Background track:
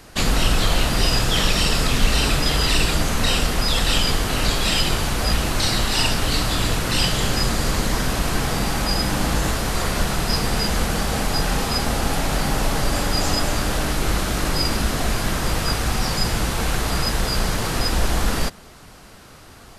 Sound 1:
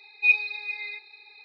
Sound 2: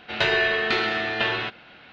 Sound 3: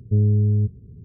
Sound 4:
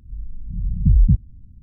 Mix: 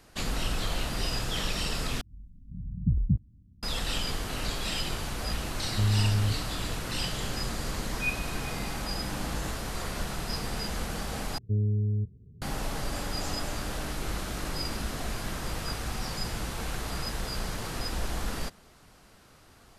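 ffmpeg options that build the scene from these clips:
ffmpeg -i bed.wav -i cue0.wav -i cue1.wav -i cue2.wav -i cue3.wav -filter_complex "[3:a]asplit=2[link_01][link_02];[0:a]volume=-12dB[link_03];[4:a]highpass=frequency=150:poles=1[link_04];[link_01]equalizer=frequency=140:width=1.2:gain=12[link_05];[link_03]asplit=3[link_06][link_07][link_08];[link_06]atrim=end=2.014[link_09];[link_04]atrim=end=1.62,asetpts=PTS-STARTPTS,volume=-4.5dB[link_10];[link_07]atrim=start=3.626:end=11.384[link_11];[link_02]atrim=end=1.04,asetpts=PTS-STARTPTS,volume=-9dB[link_12];[link_08]atrim=start=12.416[link_13];[link_05]atrim=end=1.04,asetpts=PTS-STARTPTS,volume=-15dB,afade=type=in:duration=0.004:curve=hsin,afade=type=out:start_time=1.036:duration=0.004:curve=hsin,adelay=5660[link_14];[1:a]atrim=end=1.44,asetpts=PTS-STARTPTS,volume=-12dB,afade=type=in:duration=0.004:curve=hsin,afade=type=out:start_time=1.436:duration=0.004:curve=hsin,adelay=343098S[link_15];[link_09][link_10]acrossfade=duration=0.004:curve1=hsin:curve2=hsin[link_16];[link_16][link_11]acrossfade=duration=0.004:curve1=hsin:curve2=hsin[link_17];[link_17][link_12]acrossfade=duration=0.004:curve1=hsin:curve2=hsin[link_18];[link_18][link_13]acrossfade=duration=0.004:curve1=hsin:curve2=hsin[link_19];[link_19][link_14][link_15]amix=inputs=3:normalize=0" out.wav

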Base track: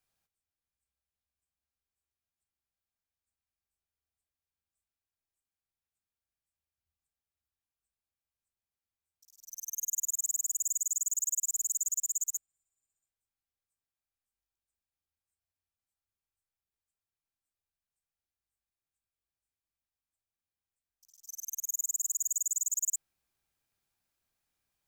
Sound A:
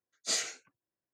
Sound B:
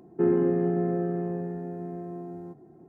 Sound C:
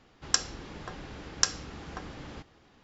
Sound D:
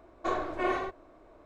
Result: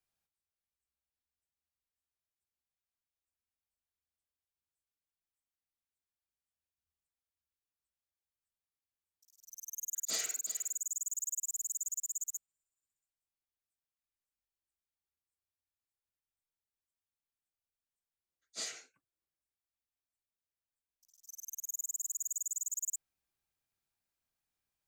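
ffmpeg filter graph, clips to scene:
ffmpeg -i bed.wav -i cue0.wav -filter_complex "[1:a]asplit=2[link_01][link_02];[0:a]volume=-6dB[link_03];[link_01]aecho=1:1:360:0.188,atrim=end=1.13,asetpts=PTS-STARTPTS,volume=-6dB,afade=type=in:duration=0.004:curve=hsin,afade=type=out:start_time=1.126:duration=0.004:curve=hsin,adelay=9820[link_04];[link_02]atrim=end=1.13,asetpts=PTS-STARTPTS,volume=-9.5dB,afade=type=in:duration=0.004:curve=hsin,afade=type=out:start_time=1.126:duration=0.004:curve=hsin,adelay=18290[link_05];[link_03][link_04][link_05]amix=inputs=3:normalize=0" out.wav

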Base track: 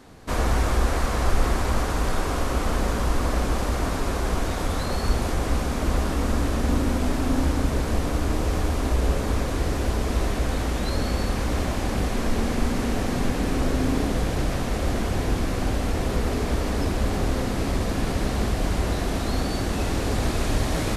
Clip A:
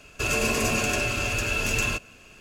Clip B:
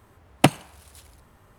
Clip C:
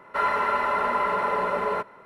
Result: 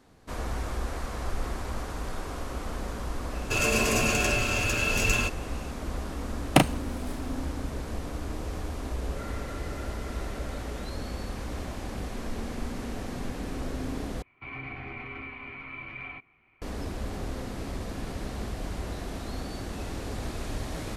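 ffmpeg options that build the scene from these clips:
ffmpeg -i bed.wav -i cue0.wav -i cue1.wav -i cue2.wav -filter_complex "[1:a]asplit=2[link_01][link_02];[0:a]volume=-10.5dB[link_03];[2:a]asplit=2[link_04][link_05];[link_05]adelay=36,volume=-4dB[link_06];[link_04][link_06]amix=inputs=2:normalize=0[link_07];[3:a]asuperstop=centerf=1000:order=4:qfactor=1.7[link_08];[link_02]highpass=frequency=300:width_type=q:width=0.5412,highpass=frequency=300:width_type=q:width=1.307,lowpass=frequency=3100:width_type=q:width=0.5176,lowpass=frequency=3100:width_type=q:width=0.7071,lowpass=frequency=3100:width_type=q:width=1.932,afreqshift=-320[link_09];[link_03]asplit=2[link_10][link_11];[link_10]atrim=end=14.224[link_12];[link_09]atrim=end=2.4,asetpts=PTS-STARTPTS,volume=-12.5dB[link_13];[link_11]atrim=start=16.616[link_14];[link_01]atrim=end=2.4,asetpts=PTS-STARTPTS,volume=-0.5dB,afade=type=in:duration=0.004:curve=hsin,afade=type=out:start_time=2.396:duration=0.004:curve=hsin,adelay=3310[link_15];[link_07]atrim=end=1.58,asetpts=PTS-STARTPTS,volume=-3dB,afade=type=in:duration=0.004:curve=hsin,afade=type=out:start_time=1.576:duration=0.004:curve=hsin,adelay=6120[link_16];[link_08]atrim=end=2.05,asetpts=PTS-STARTPTS,volume=-17.5dB,afade=type=in:duration=0.004:curve=hsin,afade=type=out:start_time=2.046:duration=0.004:curve=hsin,adelay=9020[link_17];[link_12][link_13]acrossfade=duration=0.004:curve1=hsin:curve2=hsin[link_18];[link_18][link_14]acrossfade=duration=0.004:curve1=hsin:curve2=hsin[link_19];[link_19][link_15][link_16][link_17]amix=inputs=4:normalize=0" out.wav

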